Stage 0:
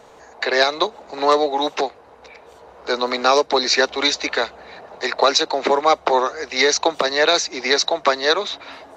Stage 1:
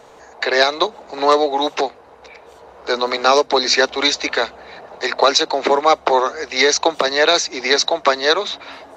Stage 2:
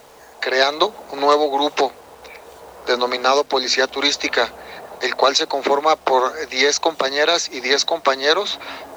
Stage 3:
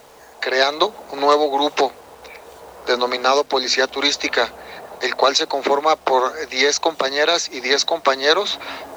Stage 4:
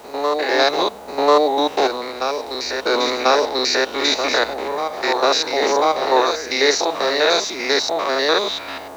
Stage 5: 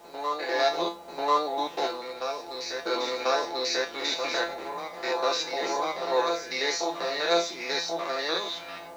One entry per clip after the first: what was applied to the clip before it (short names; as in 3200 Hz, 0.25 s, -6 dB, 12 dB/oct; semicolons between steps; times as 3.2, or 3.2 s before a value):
notches 50/100/150/200/250 Hz; gain +2 dB
vocal rider within 5 dB 0.5 s; requantised 8-bit, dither none; gain -1 dB
vocal rider within 3 dB 2 s
stepped spectrum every 0.1 s; reverse echo 1.041 s -6.5 dB; gain +2.5 dB
resonator 170 Hz, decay 0.26 s, harmonics all, mix 90%